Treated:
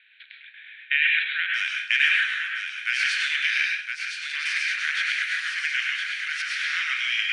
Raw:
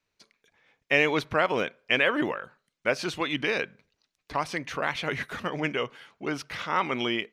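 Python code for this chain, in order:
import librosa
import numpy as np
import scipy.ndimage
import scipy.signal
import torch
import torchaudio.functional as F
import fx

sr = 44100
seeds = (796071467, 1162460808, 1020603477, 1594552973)

y = fx.bin_compress(x, sr, power=0.6)
y = fx.cheby1_bandpass(y, sr, low_hz=1500.0, high_hz=fx.steps((0.0, 3900.0), (1.53, 9900.0)), order=5)
y = y + 10.0 ** (-5.5 / 20.0) * np.pad(y, (int(1015 * sr / 1000.0), 0))[:len(y)]
y = fx.rev_plate(y, sr, seeds[0], rt60_s=0.52, hf_ratio=0.95, predelay_ms=90, drr_db=-1.0)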